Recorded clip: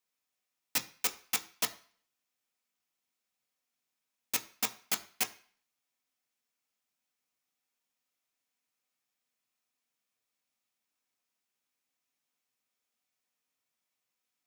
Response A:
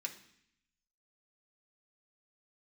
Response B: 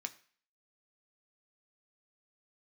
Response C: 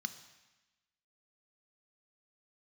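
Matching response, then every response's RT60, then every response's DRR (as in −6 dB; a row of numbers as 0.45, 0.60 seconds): B; 0.65, 0.45, 1.1 seconds; 0.5, 6.0, 9.5 decibels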